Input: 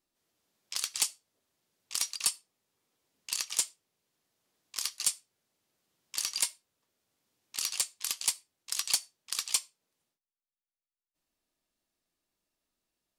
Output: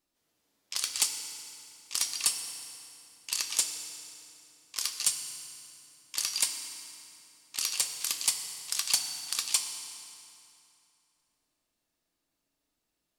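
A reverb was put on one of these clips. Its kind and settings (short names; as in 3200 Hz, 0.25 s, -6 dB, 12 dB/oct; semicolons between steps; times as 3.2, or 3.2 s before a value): FDN reverb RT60 2.9 s, low-frequency decay 1.2×, high-frequency decay 0.8×, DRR 5 dB; gain +1.5 dB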